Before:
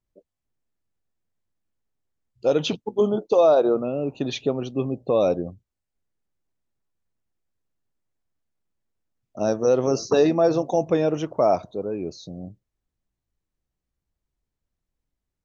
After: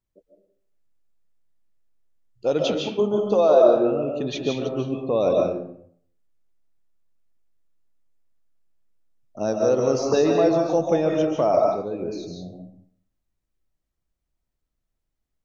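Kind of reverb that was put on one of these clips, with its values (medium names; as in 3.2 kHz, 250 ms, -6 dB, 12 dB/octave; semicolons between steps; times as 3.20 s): algorithmic reverb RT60 0.61 s, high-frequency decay 0.7×, pre-delay 105 ms, DRR 0.5 dB; trim -2 dB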